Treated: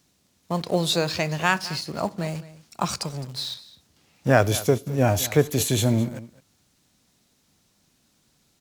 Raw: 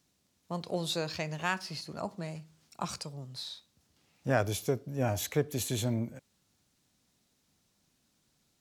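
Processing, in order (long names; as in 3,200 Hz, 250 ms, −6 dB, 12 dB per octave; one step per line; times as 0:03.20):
in parallel at −11 dB: bit reduction 7 bits
on the sum: single-tap delay 212 ms −17.5 dB
level +8 dB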